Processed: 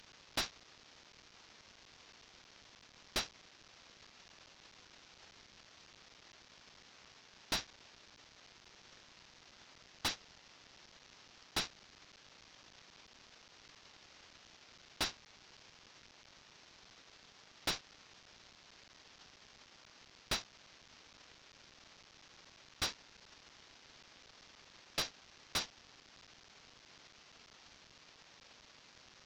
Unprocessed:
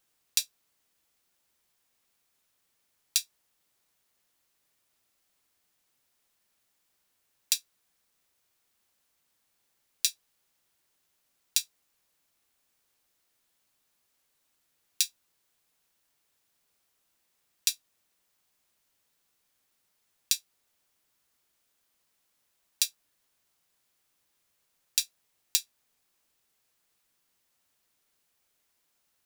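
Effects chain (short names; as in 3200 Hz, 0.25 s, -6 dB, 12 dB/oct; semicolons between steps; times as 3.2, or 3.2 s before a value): CVSD 32 kbps; hard clip -36.5 dBFS, distortion -8 dB; limiter -47.5 dBFS, peak gain reduction 11 dB; gain +17.5 dB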